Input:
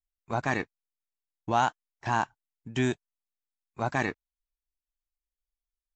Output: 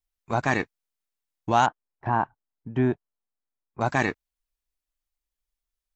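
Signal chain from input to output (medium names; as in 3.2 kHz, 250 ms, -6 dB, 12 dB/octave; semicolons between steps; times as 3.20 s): 1.66–3.81 s: low-pass 1.2 kHz 12 dB/octave; trim +4.5 dB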